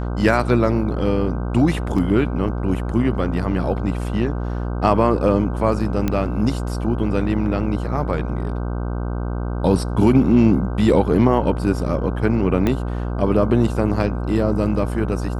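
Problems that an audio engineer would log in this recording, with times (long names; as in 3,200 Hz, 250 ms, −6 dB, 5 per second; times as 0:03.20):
mains buzz 60 Hz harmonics 26 −24 dBFS
0:01.98: drop-out 3.9 ms
0:06.08: click −8 dBFS
0:12.67: click −8 dBFS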